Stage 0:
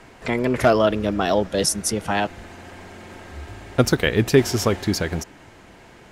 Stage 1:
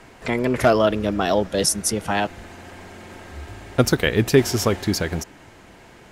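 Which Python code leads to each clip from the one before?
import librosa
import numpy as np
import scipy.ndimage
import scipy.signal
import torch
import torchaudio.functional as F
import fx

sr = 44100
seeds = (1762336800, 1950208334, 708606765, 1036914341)

y = fx.high_shelf(x, sr, hz=9800.0, db=4.0)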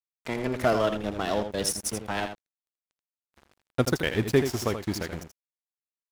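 y = np.sign(x) * np.maximum(np.abs(x) - 10.0 ** (-29.5 / 20.0), 0.0)
y = y + 10.0 ** (-8.5 / 20.0) * np.pad(y, (int(81 * sr / 1000.0), 0))[:len(y)]
y = F.gain(torch.from_numpy(y), -6.0).numpy()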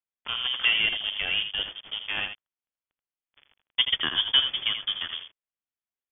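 y = fx.self_delay(x, sr, depth_ms=0.082)
y = fx.freq_invert(y, sr, carrier_hz=3400)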